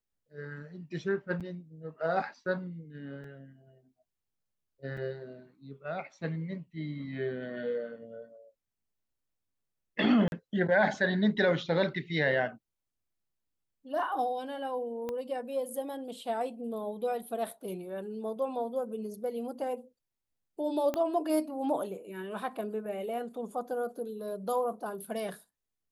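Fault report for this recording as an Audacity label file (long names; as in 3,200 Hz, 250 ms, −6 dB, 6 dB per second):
1.400000	1.410000	drop-out 6.9 ms
3.240000	3.240000	drop-out 2.7 ms
4.970000	4.970000	drop-out 4.1 ms
10.280000	10.320000	drop-out 41 ms
15.090000	15.090000	click −23 dBFS
20.940000	20.940000	click −19 dBFS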